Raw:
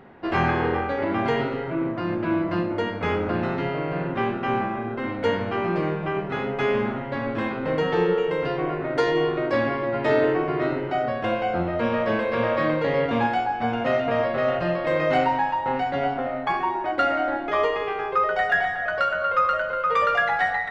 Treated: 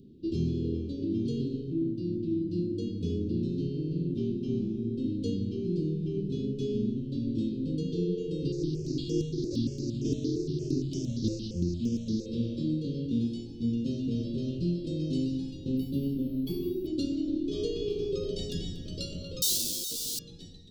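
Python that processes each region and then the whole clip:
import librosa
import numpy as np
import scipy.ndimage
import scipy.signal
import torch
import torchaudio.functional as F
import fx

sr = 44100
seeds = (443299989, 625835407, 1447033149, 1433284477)

y = fx.chain(x, sr, fx.cvsd(bps=32000),
    fx.phaser_held(hz=8.7, low_hz=850.0, high_hz=4100.0), at=(8.52, 12.26))
y = fx.chain(y, sr, fx.high_shelf(hz=6200.0, db=-6.5),
    fx.resample_linear(factor=3), at=(15.77, 16.87))
y = fx.chain(y, sr, fx.clip_1bit(),
    fx.low_shelf(hz=300.0, db=-10.5), at=(19.42, 20.19))
y = scipy.signal.sosfilt(scipy.signal.cheby2(4, 50, [670.0, 2100.0], 'bandstop', fs=sr, output='sos'), y)
y = fx.rider(y, sr, range_db=10, speed_s=0.5)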